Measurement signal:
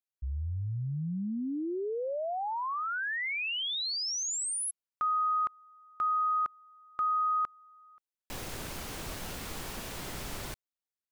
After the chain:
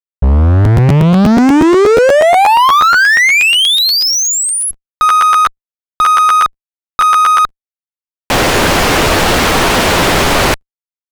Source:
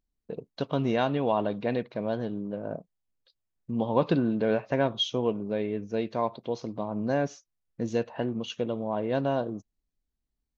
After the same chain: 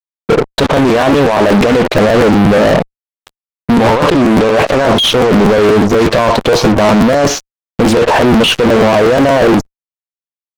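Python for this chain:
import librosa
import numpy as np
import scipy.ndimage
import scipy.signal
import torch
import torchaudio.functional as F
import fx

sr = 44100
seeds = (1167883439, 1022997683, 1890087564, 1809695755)

y = fx.bass_treble(x, sr, bass_db=-7, treble_db=-2)
y = fx.over_compress(y, sr, threshold_db=-36.0, ratio=-1.0)
y = fx.fuzz(y, sr, gain_db=46.0, gate_db=-50.0)
y = fx.high_shelf(y, sr, hz=5100.0, db=-9.5)
y = fx.buffer_crackle(y, sr, first_s=0.64, period_s=0.12, block=512, kind='repeat')
y = fx.doppler_dist(y, sr, depth_ms=0.51)
y = F.gain(torch.from_numpy(y), 7.5).numpy()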